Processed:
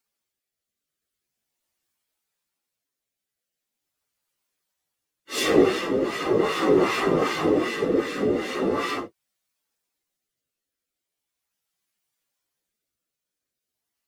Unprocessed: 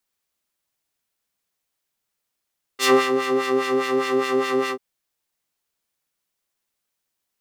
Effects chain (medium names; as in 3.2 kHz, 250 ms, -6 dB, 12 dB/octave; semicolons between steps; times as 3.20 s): rotary cabinet horn 0.75 Hz; whisper effect; plain phase-vocoder stretch 1.9×; trim +3 dB